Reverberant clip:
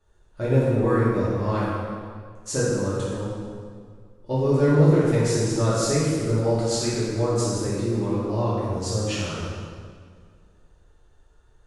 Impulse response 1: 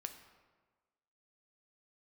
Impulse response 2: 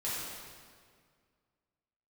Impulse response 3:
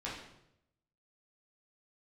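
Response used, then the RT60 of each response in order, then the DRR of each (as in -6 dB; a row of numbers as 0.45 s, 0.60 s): 2; 1.4 s, 1.9 s, 0.80 s; 6.0 dB, -10.0 dB, -7.5 dB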